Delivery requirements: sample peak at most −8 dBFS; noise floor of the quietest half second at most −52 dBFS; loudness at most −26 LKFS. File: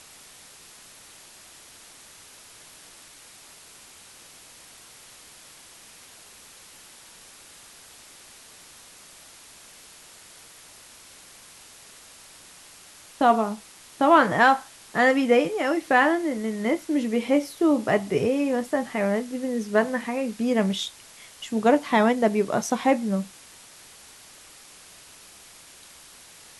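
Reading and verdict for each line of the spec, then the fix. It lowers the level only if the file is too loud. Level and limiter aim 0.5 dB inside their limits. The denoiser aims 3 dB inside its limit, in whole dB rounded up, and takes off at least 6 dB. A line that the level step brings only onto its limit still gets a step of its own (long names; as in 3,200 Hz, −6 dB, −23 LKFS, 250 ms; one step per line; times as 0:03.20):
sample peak −5.5 dBFS: out of spec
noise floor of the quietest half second −49 dBFS: out of spec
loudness −23.0 LKFS: out of spec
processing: level −3.5 dB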